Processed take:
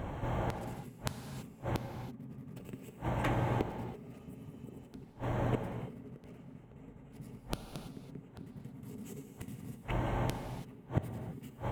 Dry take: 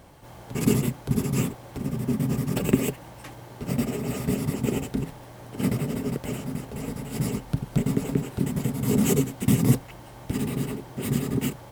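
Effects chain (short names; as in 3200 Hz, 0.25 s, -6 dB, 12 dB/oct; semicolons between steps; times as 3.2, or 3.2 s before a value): Wiener smoothing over 9 samples; spectral repair 4.22–4.82, 1300–7400 Hz after; compressor 2.5:1, threshold -25 dBFS, peak gain reduction 9 dB; flipped gate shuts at -29 dBFS, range -31 dB; low shelf 160 Hz +4 dB; non-linear reverb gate 0.36 s flat, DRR 6 dB; gain +9.5 dB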